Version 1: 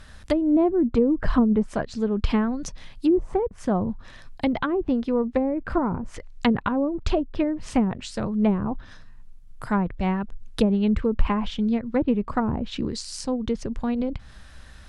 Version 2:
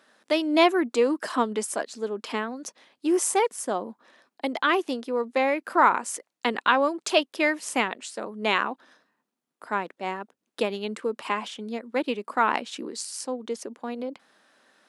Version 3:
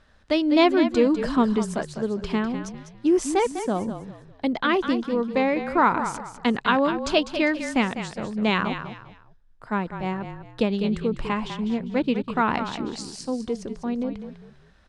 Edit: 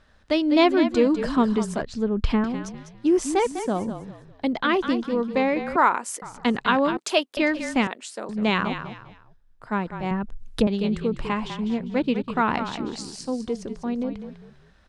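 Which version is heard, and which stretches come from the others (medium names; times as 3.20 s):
3
1.82–2.44 s: from 1
5.76–6.22 s: from 2
6.97–7.37 s: from 2
7.87–8.29 s: from 2
10.11–10.67 s: from 1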